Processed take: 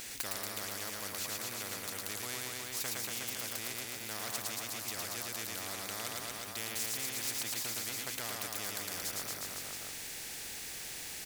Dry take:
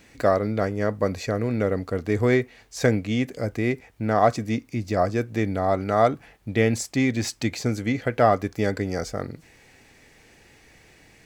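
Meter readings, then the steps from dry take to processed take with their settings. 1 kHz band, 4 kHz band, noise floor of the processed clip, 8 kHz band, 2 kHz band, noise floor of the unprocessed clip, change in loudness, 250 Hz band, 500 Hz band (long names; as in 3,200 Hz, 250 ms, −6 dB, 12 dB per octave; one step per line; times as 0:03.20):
−19.0 dB, +0.5 dB, −44 dBFS, +3.0 dB, −10.0 dB, −55 dBFS, −13.0 dB, −24.5 dB, −24.5 dB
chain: first-order pre-emphasis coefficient 0.9
reverse bouncing-ball delay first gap 110 ms, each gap 1.1×, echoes 5
every bin compressed towards the loudest bin 4 to 1
level +4 dB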